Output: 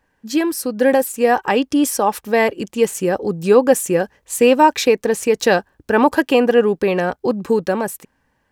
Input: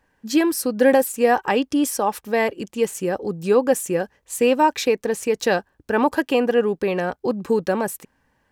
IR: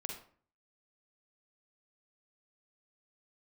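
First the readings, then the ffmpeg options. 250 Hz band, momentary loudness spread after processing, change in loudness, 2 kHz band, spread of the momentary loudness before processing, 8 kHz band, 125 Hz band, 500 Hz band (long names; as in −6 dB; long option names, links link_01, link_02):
+3.5 dB, 8 LU, +4.0 dB, +4.0 dB, 8 LU, +4.0 dB, +4.5 dB, +4.0 dB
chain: -af "dynaudnorm=framelen=310:gausssize=9:maxgain=11.5dB"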